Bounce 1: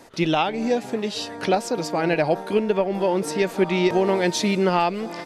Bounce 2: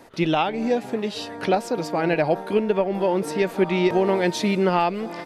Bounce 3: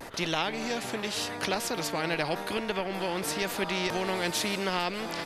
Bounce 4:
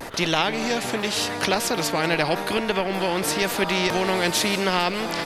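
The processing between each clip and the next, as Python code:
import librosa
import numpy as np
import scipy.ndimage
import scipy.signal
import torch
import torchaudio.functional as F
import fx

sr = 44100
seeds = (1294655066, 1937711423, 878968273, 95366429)

y1 = fx.peak_eq(x, sr, hz=6600.0, db=-6.0, octaves=1.4)
y2 = fx.vibrato(y1, sr, rate_hz=0.9, depth_cents=48.0)
y2 = fx.spectral_comp(y2, sr, ratio=2.0)
y2 = y2 * 10.0 ** (-5.0 / 20.0)
y3 = fx.dmg_crackle(y2, sr, seeds[0], per_s=24.0, level_db=-43.0)
y3 = y3 + 10.0 ** (-19.0 / 20.0) * np.pad(y3, (int(191 * sr / 1000.0), 0))[:len(y3)]
y3 = y3 * 10.0 ** (7.5 / 20.0)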